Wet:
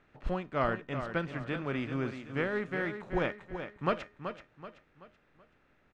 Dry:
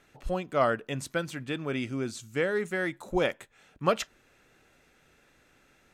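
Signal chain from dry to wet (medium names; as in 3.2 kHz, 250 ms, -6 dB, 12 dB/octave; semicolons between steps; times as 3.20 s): spectral contrast reduction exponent 0.69; low-pass 1.7 kHz 12 dB/octave; peaking EQ 700 Hz -4.5 dB 2 oct; in parallel at +2 dB: gain riding 0.5 s; on the sum: feedback comb 610 Hz, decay 0.27 s, harmonics all, mix 60%; on a send: feedback delay 380 ms, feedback 39%, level -9 dB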